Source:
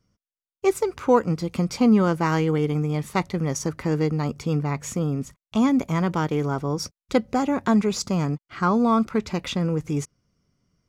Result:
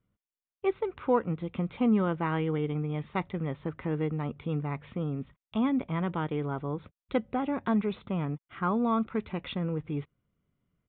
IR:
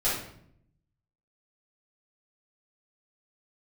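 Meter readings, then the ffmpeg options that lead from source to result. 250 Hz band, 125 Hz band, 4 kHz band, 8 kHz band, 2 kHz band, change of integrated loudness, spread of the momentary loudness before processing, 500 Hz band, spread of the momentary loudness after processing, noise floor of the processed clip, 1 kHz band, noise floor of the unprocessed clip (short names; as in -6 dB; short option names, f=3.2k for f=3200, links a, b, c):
-7.5 dB, -7.5 dB, -11.5 dB, under -40 dB, -7.5 dB, -7.5 dB, 8 LU, -7.5 dB, 8 LU, under -85 dBFS, -7.5 dB, under -85 dBFS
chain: -af "aresample=8000,aresample=44100,volume=-7.5dB"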